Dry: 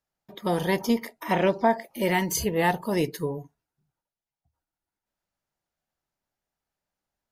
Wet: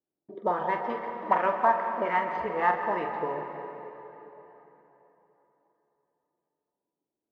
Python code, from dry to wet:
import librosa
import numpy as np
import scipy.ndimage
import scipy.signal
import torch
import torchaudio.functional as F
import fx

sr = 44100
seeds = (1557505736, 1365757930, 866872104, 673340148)

p1 = scipy.ndimage.median_filter(x, 5, mode='constant')
p2 = fx.auto_wah(p1, sr, base_hz=330.0, top_hz=1200.0, q=3.7, full_db=-21.0, direction='up')
p3 = fx.sample_hold(p2, sr, seeds[0], rate_hz=13000.0, jitter_pct=20)
p4 = p2 + (p3 * librosa.db_to_amplitude(-4.0))
p5 = fx.air_absorb(p4, sr, metres=210.0)
p6 = fx.doubler(p5, sr, ms=45.0, db=-8.5)
p7 = p6 + fx.echo_bbd(p6, sr, ms=128, stages=2048, feedback_pct=76, wet_db=-21.5, dry=0)
p8 = fx.rev_plate(p7, sr, seeds[1], rt60_s=3.7, hf_ratio=0.75, predelay_ms=110, drr_db=5.5)
y = p8 * librosa.db_to_amplitude(5.5)